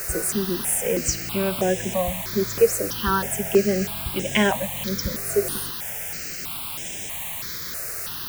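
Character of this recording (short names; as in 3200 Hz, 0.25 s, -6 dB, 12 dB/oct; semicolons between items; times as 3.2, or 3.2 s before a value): a quantiser's noise floor 6-bit, dither triangular; notches that jump at a steady rate 3.1 Hz 910–4400 Hz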